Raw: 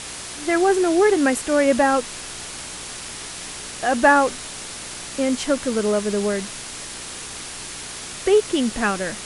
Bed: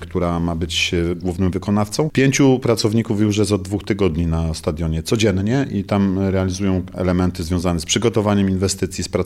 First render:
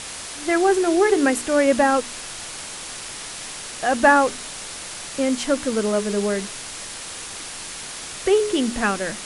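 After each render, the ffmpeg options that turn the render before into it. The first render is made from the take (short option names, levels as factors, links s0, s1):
-af "bandreject=f=60:t=h:w=4,bandreject=f=120:t=h:w=4,bandreject=f=180:t=h:w=4,bandreject=f=240:t=h:w=4,bandreject=f=300:t=h:w=4,bandreject=f=360:t=h:w=4,bandreject=f=420:t=h:w=4"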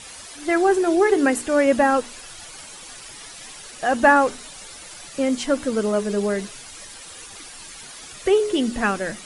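-af "afftdn=nr=11:nf=-35"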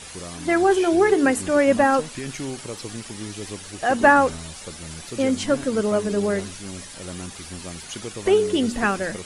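-filter_complex "[1:a]volume=0.126[s0];[0:a][s0]amix=inputs=2:normalize=0"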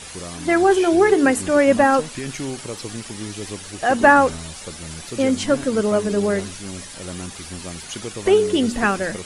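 -af "volume=1.33,alimiter=limit=0.891:level=0:latency=1"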